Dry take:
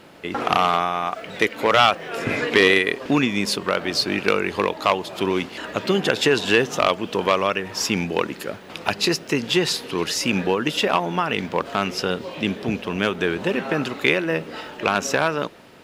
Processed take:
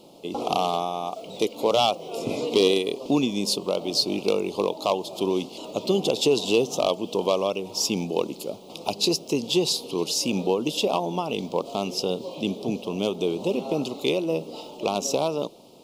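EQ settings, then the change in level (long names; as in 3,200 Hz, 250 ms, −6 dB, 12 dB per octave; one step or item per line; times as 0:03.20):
Butterworth band-reject 1,700 Hz, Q 0.65
parametric band 74 Hz −13.5 dB 0.73 octaves
low-shelf EQ 230 Hz −4.5 dB
0.0 dB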